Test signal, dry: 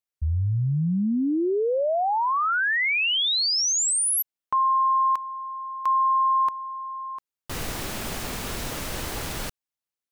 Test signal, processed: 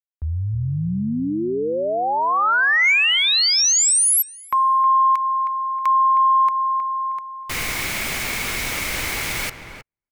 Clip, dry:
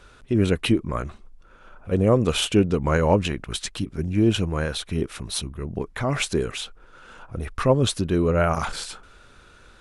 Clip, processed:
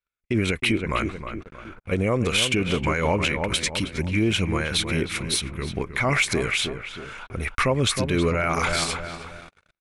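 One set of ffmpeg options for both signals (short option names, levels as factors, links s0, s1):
-filter_complex "[0:a]equalizer=f=2200:w=5.5:g=12.5,asplit=2[s0][s1];[s1]adelay=315,lowpass=f=1700:p=1,volume=0.355,asplit=2[s2][s3];[s3]adelay=315,lowpass=f=1700:p=1,volume=0.43,asplit=2[s4][s5];[s5]adelay=315,lowpass=f=1700:p=1,volume=0.43,asplit=2[s6][s7];[s7]adelay=315,lowpass=f=1700:p=1,volume=0.43,asplit=2[s8][s9];[s9]adelay=315,lowpass=f=1700:p=1,volume=0.43[s10];[s0][s2][s4][s6][s8][s10]amix=inputs=6:normalize=0,acrossover=split=1100[s11][s12];[s12]acontrast=78[s13];[s11][s13]amix=inputs=2:normalize=0,alimiter=limit=0.251:level=0:latency=1:release=101,agate=range=0.00398:threshold=0.00891:ratio=16:release=47:detection=rms"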